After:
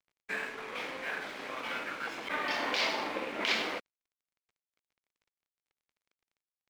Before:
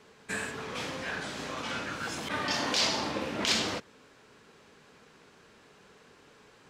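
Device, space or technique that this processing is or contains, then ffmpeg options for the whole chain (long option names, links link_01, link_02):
pocket radio on a weak battery: -af "highpass=330,lowpass=3300,aeval=exprs='sgn(val(0))*max(abs(val(0))-0.00299,0)':channel_layout=same,equalizer=frequency=2200:width_type=o:width=0.3:gain=6"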